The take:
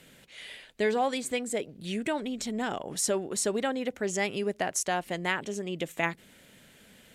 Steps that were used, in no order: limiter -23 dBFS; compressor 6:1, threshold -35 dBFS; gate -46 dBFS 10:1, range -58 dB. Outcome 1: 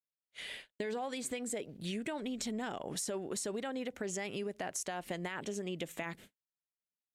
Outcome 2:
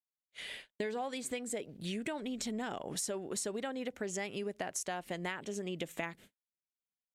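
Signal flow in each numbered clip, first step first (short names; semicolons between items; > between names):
gate > limiter > compressor; gate > compressor > limiter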